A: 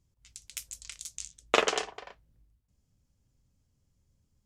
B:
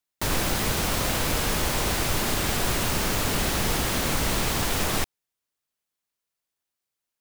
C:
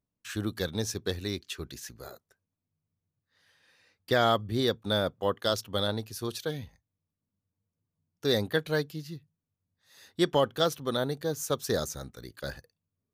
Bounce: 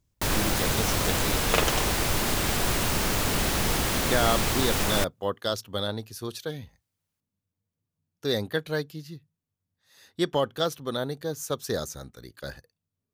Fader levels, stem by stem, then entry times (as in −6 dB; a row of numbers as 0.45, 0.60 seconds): −0.5, −0.5, −0.5 decibels; 0.00, 0.00, 0.00 seconds